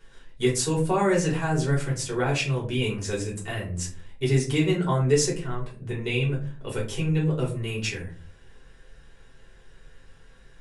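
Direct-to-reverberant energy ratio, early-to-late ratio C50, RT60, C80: −6.0 dB, 9.5 dB, 0.40 s, 14.0 dB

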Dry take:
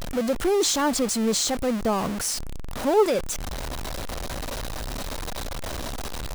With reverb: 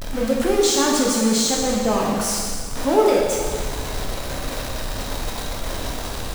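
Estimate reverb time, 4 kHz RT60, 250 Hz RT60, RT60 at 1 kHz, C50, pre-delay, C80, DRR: 1.8 s, 1.8 s, 1.9 s, 1.8 s, 0.5 dB, 6 ms, 2.0 dB, −3.0 dB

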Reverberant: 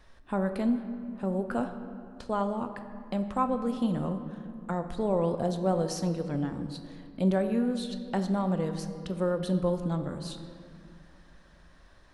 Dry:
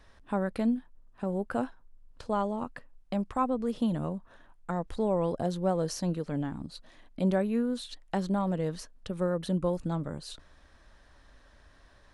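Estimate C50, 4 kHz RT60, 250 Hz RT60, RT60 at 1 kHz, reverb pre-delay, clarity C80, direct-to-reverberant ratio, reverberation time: 9.0 dB, 1.4 s, 3.1 s, 2.4 s, 5 ms, 10.0 dB, 7.0 dB, 2.5 s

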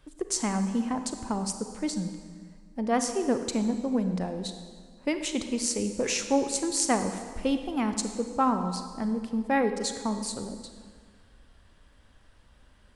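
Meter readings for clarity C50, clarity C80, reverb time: 8.0 dB, 9.5 dB, 1.9 s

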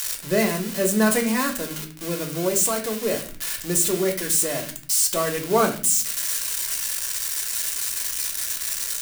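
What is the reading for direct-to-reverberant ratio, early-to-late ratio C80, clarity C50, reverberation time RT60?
1.5 dB, 14.5 dB, 10.5 dB, 0.45 s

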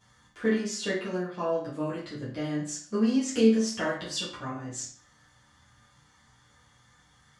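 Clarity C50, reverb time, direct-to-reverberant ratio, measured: 4.5 dB, 0.50 s, −10.0 dB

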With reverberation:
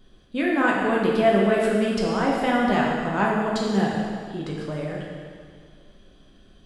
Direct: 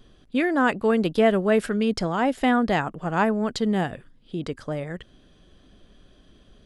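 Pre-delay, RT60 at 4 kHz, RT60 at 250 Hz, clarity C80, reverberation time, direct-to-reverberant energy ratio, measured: 5 ms, 1.8 s, 2.0 s, 2.0 dB, 2.0 s, −4.0 dB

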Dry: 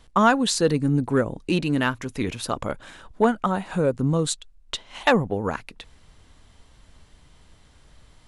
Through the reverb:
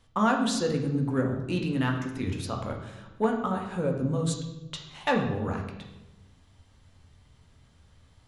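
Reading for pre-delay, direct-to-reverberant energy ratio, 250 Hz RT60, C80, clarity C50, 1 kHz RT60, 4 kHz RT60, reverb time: 3 ms, 1.5 dB, 1.4 s, 8.0 dB, 6.0 dB, 0.95 s, 0.75 s, 1.1 s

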